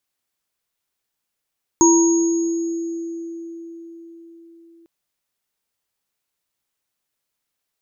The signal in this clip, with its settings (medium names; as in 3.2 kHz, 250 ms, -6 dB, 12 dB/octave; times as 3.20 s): sine partials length 3.05 s, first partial 334 Hz, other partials 949/6630 Hz, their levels -5.5/-3 dB, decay 4.97 s, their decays 0.97/2.06 s, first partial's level -10.5 dB